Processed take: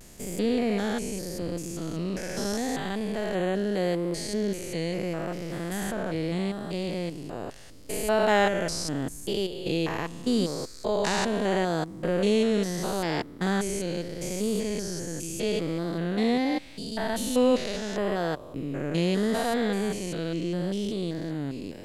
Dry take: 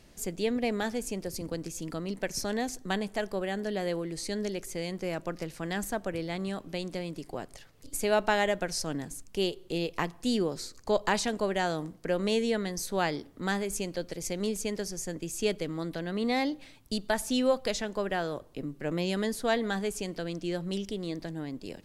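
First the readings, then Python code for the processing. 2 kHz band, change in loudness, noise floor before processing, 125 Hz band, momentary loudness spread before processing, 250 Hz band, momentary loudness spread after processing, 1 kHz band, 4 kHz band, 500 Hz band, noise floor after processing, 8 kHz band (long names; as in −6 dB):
+1.5 dB, +3.5 dB, −54 dBFS, +5.5 dB, 9 LU, +5.0 dB, 9 LU, +2.5 dB, +2.0 dB, +3.5 dB, −43 dBFS, +1.5 dB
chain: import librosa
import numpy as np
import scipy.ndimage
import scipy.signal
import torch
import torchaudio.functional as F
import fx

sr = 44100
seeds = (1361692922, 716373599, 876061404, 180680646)

y = fx.spec_steps(x, sr, hold_ms=200)
y = fx.vibrato(y, sr, rate_hz=0.78, depth_cents=53.0)
y = F.gain(torch.from_numpy(y), 6.5).numpy()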